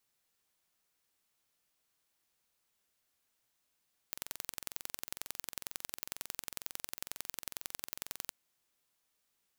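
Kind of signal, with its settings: pulse train 22.1/s, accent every 2, -10 dBFS 4.18 s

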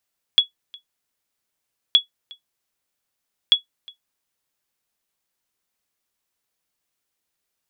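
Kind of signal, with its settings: sonar ping 3370 Hz, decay 0.12 s, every 1.57 s, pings 3, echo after 0.36 s, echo -26 dB -4.5 dBFS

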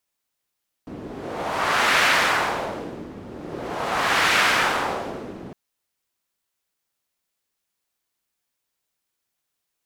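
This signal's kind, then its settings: wind-like swept noise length 4.66 s, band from 270 Hz, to 1800 Hz, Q 1.2, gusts 2, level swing 19 dB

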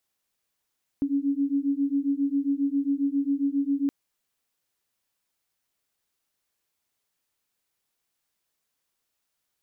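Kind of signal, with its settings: beating tones 276 Hz, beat 7.4 Hz, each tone -25.5 dBFS 2.87 s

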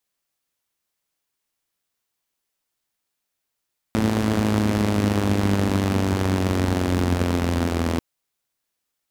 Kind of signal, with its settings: four-cylinder engine model, changing speed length 4.04 s, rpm 3300, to 2500, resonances 93/220 Hz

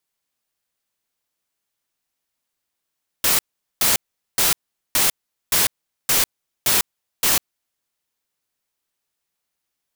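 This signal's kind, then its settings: noise bursts white, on 0.15 s, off 0.42 s, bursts 8, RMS -17 dBFS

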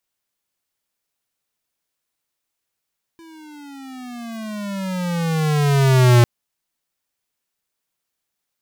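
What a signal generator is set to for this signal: gliding synth tone square, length 3.05 s, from 334 Hz, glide -18 st, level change +33 dB, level -10 dB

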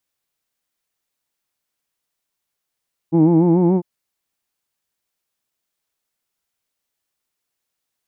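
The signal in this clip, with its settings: formant-synthesis vowel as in who'd, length 0.70 s, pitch 159 Hz, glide +2.5 st, vibrato 6.9 Hz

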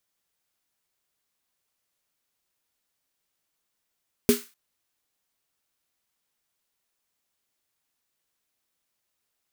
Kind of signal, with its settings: snare drum length 0.25 s, tones 240 Hz, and 410 Hz, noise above 1200 Hz, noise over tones -9 dB, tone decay 0.18 s, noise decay 0.34 s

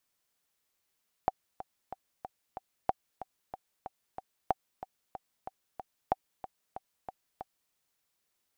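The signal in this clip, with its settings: metronome 186 bpm, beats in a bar 5, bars 4, 762 Hz, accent 14 dB -12.5 dBFS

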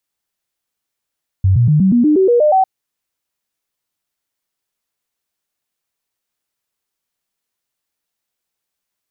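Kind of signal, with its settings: stepped sine 95.1 Hz up, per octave 3, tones 10, 0.12 s, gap 0.00 s -8 dBFS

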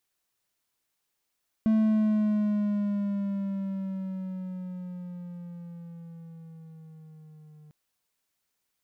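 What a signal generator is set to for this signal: gliding synth tone triangle, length 6.05 s, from 220 Hz, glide -6.5 st, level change -30 dB, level -17 dB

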